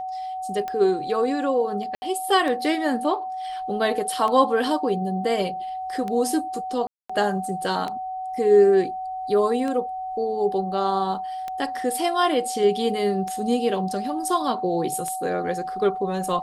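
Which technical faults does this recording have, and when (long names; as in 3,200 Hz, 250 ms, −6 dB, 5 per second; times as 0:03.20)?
scratch tick 33 1/3 rpm −17 dBFS
whistle 750 Hz −28 dBFS
0:01.95–0:02.02: drop-out 70 ms
0:06.87–0:07.09: drop-out 225 ms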